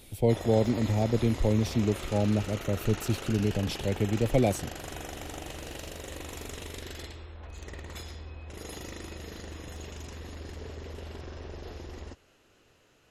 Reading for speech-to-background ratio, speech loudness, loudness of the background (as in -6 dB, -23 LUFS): 13.0 dB, -28.0 LUFS, -41.0 LUFS